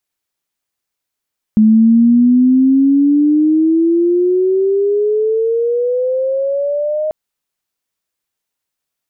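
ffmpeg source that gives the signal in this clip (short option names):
-f lavfi -i "aevalsrc='pow(10,(-5-9.5*t/5.54)/20)*sin(2*PI*214*5.54/(18.5*log(2)/12)*(exp(18.5*log(2)/12*t/5.54)-1))':d=5.54:s=44100"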